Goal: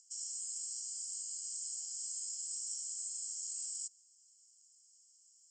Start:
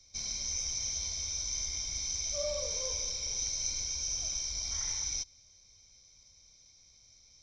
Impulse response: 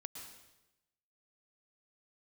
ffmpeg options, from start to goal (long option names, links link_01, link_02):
-af "acompressor=mode=upward:threshold=-58dB:ratio=2.5,asuperpass=centerf=4400:order=4:qfactor=2.6,asetrate=59535,aresample=44100"